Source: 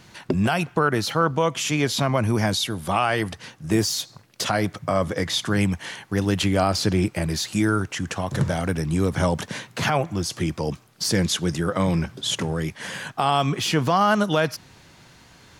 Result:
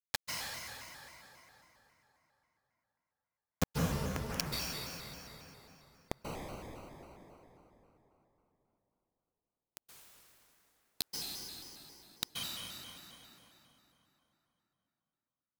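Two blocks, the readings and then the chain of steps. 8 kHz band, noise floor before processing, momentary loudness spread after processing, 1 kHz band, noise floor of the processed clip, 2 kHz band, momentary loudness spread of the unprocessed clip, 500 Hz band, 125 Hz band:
-16.0 dB, -52 dBFS, 22 LU, -25.0 dB, under -85 dBFS, -20.5 dB, 8 LU, -24.5 dB, -21.5 dB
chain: flange 0.59 Hz, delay 7.7 ms, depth 5.9 ms, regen +59%; HPF 63 Hz 12 dB/oct; fixed phaser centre 2100 Hz, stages 8; sample leveller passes 2; flipped gate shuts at -30 dBFS, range -29 dB; flange 0.25 Hz, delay 6.7 ms, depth 9.3 ms, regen +38%; bit-crush 7-bit; plate-style reverb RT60 3.7 s, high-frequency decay 0.7×, pre-delay 0.12 s, DRR -4.5 dB; shaped vibrato square 3.7 Hz, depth 160 cents; gain +17 dB

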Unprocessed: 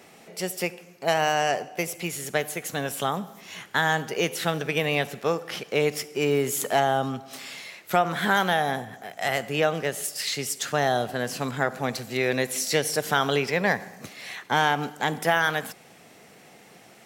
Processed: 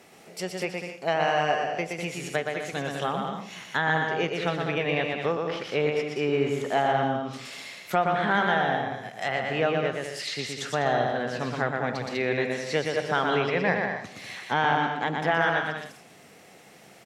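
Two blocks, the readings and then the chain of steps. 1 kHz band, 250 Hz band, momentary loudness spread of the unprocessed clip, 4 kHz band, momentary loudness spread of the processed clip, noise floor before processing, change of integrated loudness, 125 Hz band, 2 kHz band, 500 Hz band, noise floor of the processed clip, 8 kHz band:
0.0 dB, -0.5 dB, 10 LU, -3.5 dB, 9 LU, -52 dBFS, -1.0 dB, -0.5 dB, -0.5 dB, -0.5 dB, -52 dBFS, -11.5 dB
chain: bouncing-ball echo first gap 0.12 s, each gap 0.65×, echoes 5; treble ducked by the level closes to 3000 Hz, closed at -21.5 dBFS; gain -2.5 dB

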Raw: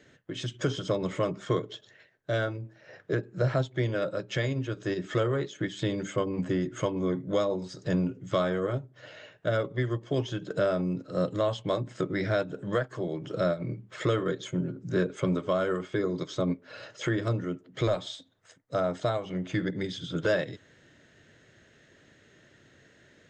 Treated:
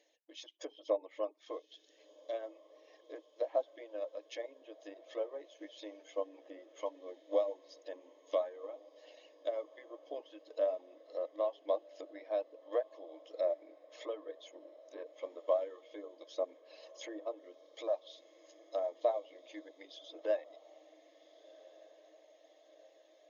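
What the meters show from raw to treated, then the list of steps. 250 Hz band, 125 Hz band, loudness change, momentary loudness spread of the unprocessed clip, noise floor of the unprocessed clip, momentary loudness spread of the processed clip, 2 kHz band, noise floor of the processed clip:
-21.5 dB, under -40 dB, -9.5 dB, 8 LU, -60 dBFS, 19 LU, -21.0 dB, -66 dBFS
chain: treble ducked by the level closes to 1700 Hz, closed at -26 dBFS; reverb removal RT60 0.54 s; high shelf 5200 Hz +4.5 dB; phaser 1.1 Hz, delay 1 ms, feedback 22%; brick-wall FIR band-pass 300–6900 Hz; fixed phaser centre 380 Hz, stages 6; on a send: diffused feedback echo 1.461 s, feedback 60%, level -16 dB; on the sum: upward expander 1.5:1, over -39 dBFS; gain -1.5 dB

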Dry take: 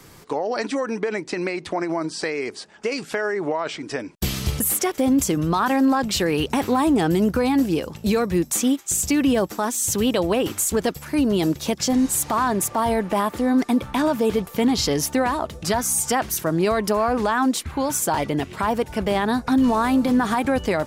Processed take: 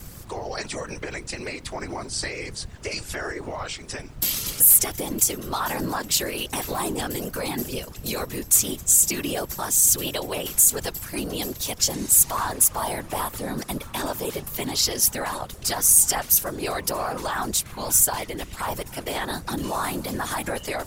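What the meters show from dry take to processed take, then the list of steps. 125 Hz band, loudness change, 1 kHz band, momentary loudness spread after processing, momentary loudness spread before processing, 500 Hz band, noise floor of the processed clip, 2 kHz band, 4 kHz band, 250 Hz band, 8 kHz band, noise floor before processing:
-6.0 dB, -0.5 dB, -6.0 dB, 16 LU, 7 LU, -8.5 dB, -41 dBFS, -4.0 dB, +1.0 dB, -13.0 dB, +6.0 dB, -44 dBFS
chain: RIAA curve recording; added noise brown -33 dBFS; whisperiser; gain -6 dB

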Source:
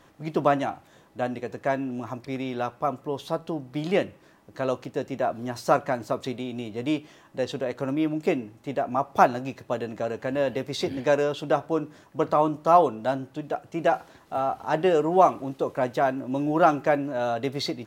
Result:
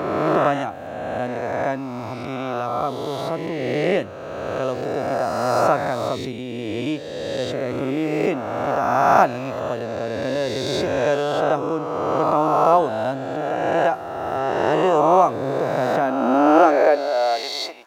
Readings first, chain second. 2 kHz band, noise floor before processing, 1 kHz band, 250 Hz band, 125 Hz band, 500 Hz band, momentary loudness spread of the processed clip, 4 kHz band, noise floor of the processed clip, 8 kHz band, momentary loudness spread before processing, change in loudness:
+6.0 dB, -56 dBFS, +5.5 dB, +4.0 dB, +4.0 dB, +5.5 dB, 11 LU, +6.5 dB, -32 dBFS, +6.0 dB, 12 LU, +5.0 dB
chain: spectral swells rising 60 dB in 2.26 s; high-pass sweep 77 Hz -> 820 Hz, 15.16–17.52; gain -1 dB

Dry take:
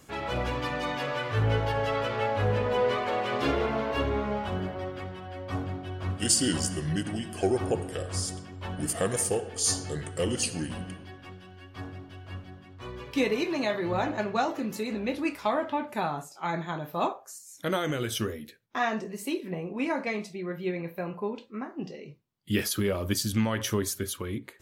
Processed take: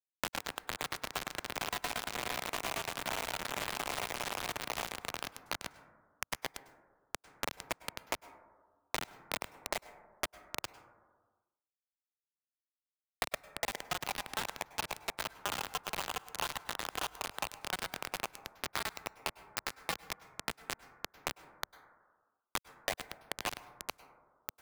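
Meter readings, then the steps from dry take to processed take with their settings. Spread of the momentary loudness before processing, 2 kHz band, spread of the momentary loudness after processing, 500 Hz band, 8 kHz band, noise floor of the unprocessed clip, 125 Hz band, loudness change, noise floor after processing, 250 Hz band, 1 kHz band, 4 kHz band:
15 LU, -4.5 dB, 7 LU, -15.5 dB, -10.5 dB, -51 dBFS, -22.0 dB, -9.5 dB, under -85 dBFS, -20.5 dB, -8.0 dB, -4.5 dB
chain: tremolo saw down 8.7 Hz, depth 95%; on a send: echo with dull and thin repeats by turns 0.407 s, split 870 Hz, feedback 85%, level -3 dB; on the sum: wrapped overs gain 16.5 dB; mistuned SSB +170 Hz 510–2100 Hz; limiter -27 dBFS, peak gain reduction 10.5 dB; bit-crush 5-bit; plate-style reverb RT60 0.8 s, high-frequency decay 0.3×, pre-delay 90 ms, DRR 17.5 dB; three-band squash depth 100%

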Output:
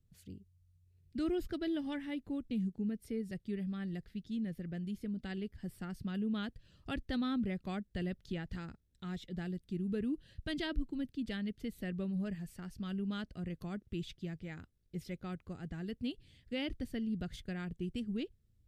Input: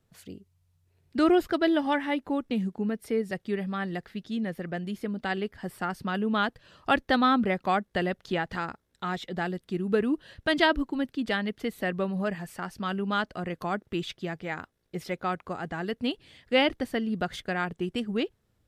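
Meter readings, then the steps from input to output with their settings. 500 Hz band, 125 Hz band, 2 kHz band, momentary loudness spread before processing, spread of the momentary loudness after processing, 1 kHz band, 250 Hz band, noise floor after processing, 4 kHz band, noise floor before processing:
-15.0 dB, -4.5 dB, -17.0 dB, 12 LU, 9 LU, -21.5 dB, -8.0 dB, -73 dBFS, -13.0 dB, -73 dBFS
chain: passive tone stack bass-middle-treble 10-0-1; in parallel at +3 dB: limiter -40.5 dBFS, peak gain reduction 10.5 dB; on the sum: gain +3 dB

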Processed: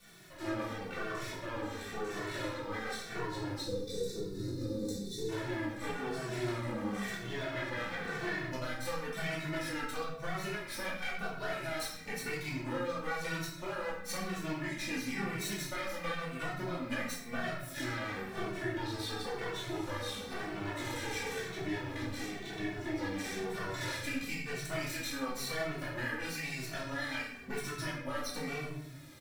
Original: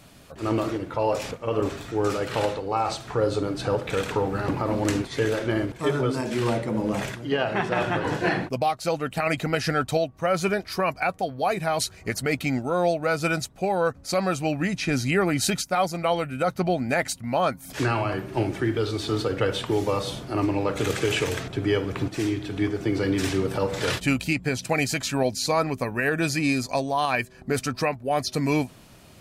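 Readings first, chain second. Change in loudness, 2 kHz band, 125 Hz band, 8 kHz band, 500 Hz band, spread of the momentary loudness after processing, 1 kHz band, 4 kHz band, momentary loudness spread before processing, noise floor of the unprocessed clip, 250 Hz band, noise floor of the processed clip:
-12.0 dB, -8.5 dB, -13.0 dB, -10.5 dB, -14.5 dB, 3 LU, -14.0 dB, -9.5 dB, 4 LU, -49 dBFS, -12.5 dB, -45 dBFS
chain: minimum comb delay 0.52 ms; spectral gain 3.6–5.29, 540–3500 Hz -24 dB; low shelf 340 Hz -10 dB; compressor, threshold -34 dBFS, peak gain reduction 12 dB; bit-crush 11-bit; shoebox room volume 250 m³, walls mixed, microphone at 2.5 m; endless flanger 2.2 ms -0.98 Hz; gain -5.5 dB

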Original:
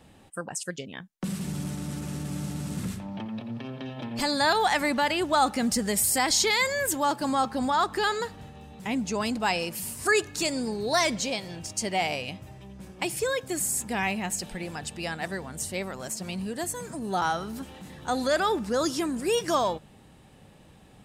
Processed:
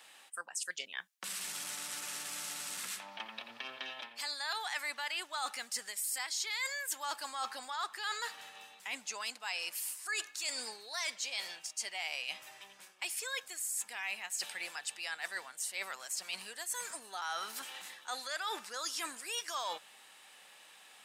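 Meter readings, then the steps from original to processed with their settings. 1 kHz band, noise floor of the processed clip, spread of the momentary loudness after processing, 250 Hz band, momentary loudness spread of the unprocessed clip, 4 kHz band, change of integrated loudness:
-14.0 dB, -59 dBFS, 9 LU, -30.0 dB, 13 LU, -6.5 dB, -10.5 dB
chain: HPF 1400 Hz 12 dB/oct; reverse; compressor 5:1, threshold -43 dBFS, peak gain reduction 19.5 dB; reverse; gain +6 dB

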